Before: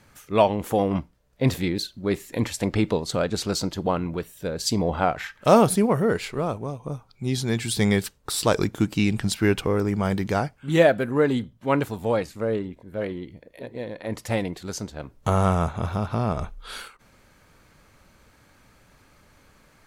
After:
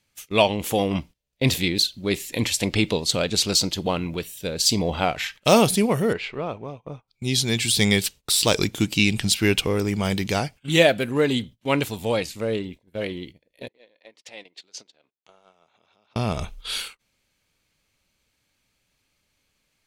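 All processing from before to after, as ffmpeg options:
-filter_complex "[0:a]asettb=1/sr,asplit=3[a][b][c];[a]atrim=end=6.134[d];[b]atrim=start=6.13:end=7.08,asetpts=PTS-STARTPTS,afade=t=in:d=0.004:c=qsin,afade=t=out:st=0.946:d=0.004:c=qsin,lowpass=2.1k,lowshelf=f=280:g=-7.5[e];[c]atrim=start=7.076[f];[d][e]acrossfade=d=0.004:c1=hsin:c2=qsin[g];[g][f]acrossfade=d=0.004:c1=qsin:c2=hsin,asettb=1/sr,asplit=3[h][i][j];[h]atrim=end=13.684[k];[i]atrim=start=13.68:end=16.16,asetpts=PTS-STARTPTS,afade=t=in:d=0.004:c=qsin,afade=t=out:st=2.476:d=0.004:c=qsin,agate=range=-20dB:threshold=-44dB:ratio=16:release=100:detection=peak,acompressor=threshold=-37dB:ratio=4:attack=3.2:release=140:knee=1:detection=peak,highpass=390,lowpass=4.7k[l];[j]atrim=start=16.156[m];[k][l]acrossfade=d=0.004:c1=hsin:c2=qsin[n];[n][m]acrossfade=d=0.004:c1=qsin:c2=hsin,deesser=0.45,highshelf=f=2k:t=q:w=1.5:g=9,agate=range=-19dB:threshold=-39dB:ratio=16:detection=peak"

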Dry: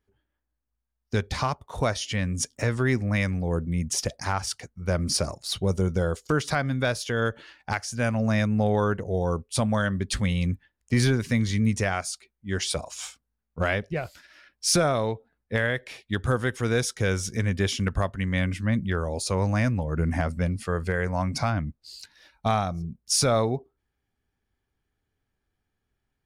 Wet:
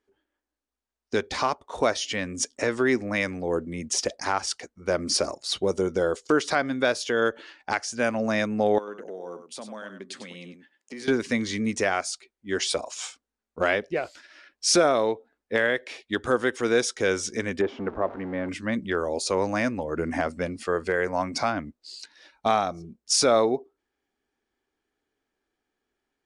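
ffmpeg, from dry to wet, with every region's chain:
-filter_complex "[0:a]asettb=1/sr,asplit=3[a][b][c];[a]atrim=end=8.784[d];[b]atrim=start=8.78:end=11.08,asetpts=PTS-STARTPTS,afade=t=in:d=0.004:c=qsin,afade=t=out:st=2.296:d=0.004:c=qsin,highpass=f=160:w=0.5412,highpass=f=160:w=1.3066,acompressor=threshold=-39dB:ratio=4:attack=3.2:release=140:knee=1:detection=peak,aecho=1:1:97:0.355,atrim=end_sample=101430[e];[c]atrim=start=11.076[f];[d][e]acrossfade=d=0.004:c1=hsin:c2=qsin[g];[g][f]acrossfade=d=0.004:c1=qsin:c2=hsin,asettb=1/sr,asplit=3[h][i][j];[h]atrim=end=17.614[k];[i]atrim=start=17.61:end=18.49,asetpts=PTS-STARTPTS,afade=t=in:d=0.004:c=qsin,afade=t=out:st=0.876:d=0.004:c=qsin,aeval=exprs='val(0)+0.5*0.0282*sgn(val(0))':c=same,lowpass=1k,lowshelf=f=170:g=-7.5[l];[j]atrim=start=18.486[m];[k][l]acrossfade=d=0.004:c1=hsin:c2=qsin[n];[n][m]acrossfade=d=0.004:c1=qsin:c2=hsin,lowpass=f=8.8k:w=0.5412,lowpass=f=8.8k:w=1.3066,lowshelf=f=200:t=q:w=1.5:g=-14,volume=2dB"

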